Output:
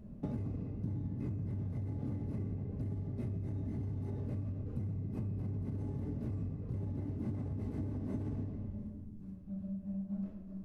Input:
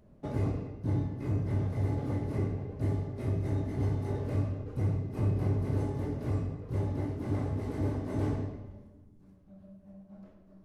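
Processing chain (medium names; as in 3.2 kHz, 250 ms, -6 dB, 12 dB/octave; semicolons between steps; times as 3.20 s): bass shelf 300 Hz +11 dB; peak limiter -19 dBFS, peak gain reduction 9 dB; compression 5:1, threshold -36 dBFS, peak gain reduction 13 dB; small resonant body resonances 210/2600 Hz, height 8 dB; trim -2 dB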